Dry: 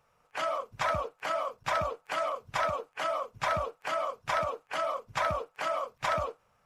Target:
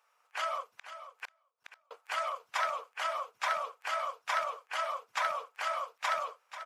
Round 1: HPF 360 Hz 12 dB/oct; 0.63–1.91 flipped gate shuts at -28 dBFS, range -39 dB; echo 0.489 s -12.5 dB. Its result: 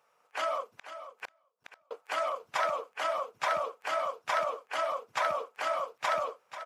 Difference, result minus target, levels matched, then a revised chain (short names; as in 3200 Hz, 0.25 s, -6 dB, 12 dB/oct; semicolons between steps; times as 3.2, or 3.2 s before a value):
500 Hz band +5.0 dB
HPF 920 Hz 12 dB/oct; 0.63–1.91 flipped gate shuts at -28 dBFS, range -39 dB; echo 0.489 s -12.5 dB